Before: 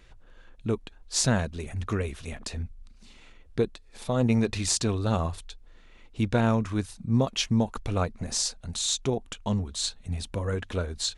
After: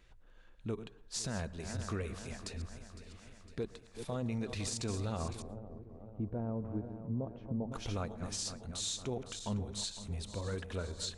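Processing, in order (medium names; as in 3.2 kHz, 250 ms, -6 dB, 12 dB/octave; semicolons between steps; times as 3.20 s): backward echo that repeats 254 ms, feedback 73%, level -12.5 dB; peak limiter -19 dBFS, peak gain reduction 9 dB; 5.42–7.72 s: Chebyshev low-pass 570 Hz, order 2; plate-style reverb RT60 0.57 s, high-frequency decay 0.25×, pre-delay 100 ms, DRR 19.5 dB; trim -8.5 dB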